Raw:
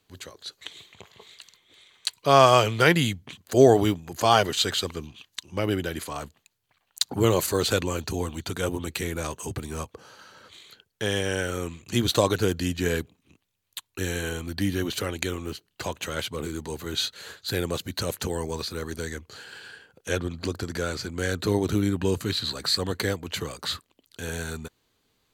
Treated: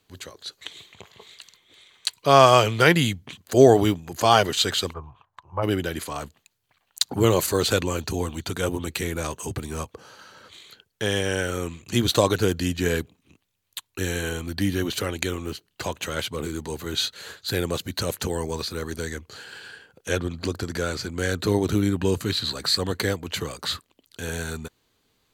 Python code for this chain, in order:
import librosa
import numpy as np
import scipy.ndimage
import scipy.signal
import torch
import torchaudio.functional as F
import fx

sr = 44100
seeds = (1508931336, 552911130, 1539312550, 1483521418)

y = fx.curve_eq(x, sr, hz=(130.0, 230.0, 1000.0, 2000.0, 5000.0), db=(0, -18, 10, -14, -30), at=(4.92, 5.62), fade=0.02)
y = y * librosa.db_to_amplitude(2.0)